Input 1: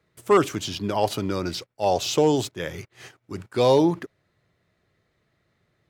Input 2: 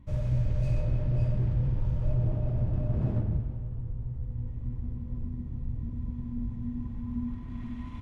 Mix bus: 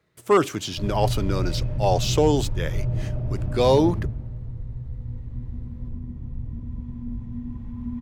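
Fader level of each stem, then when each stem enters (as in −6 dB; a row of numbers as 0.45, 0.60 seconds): 0.0, +1.5 decibels; 0.00, 0.70 seconds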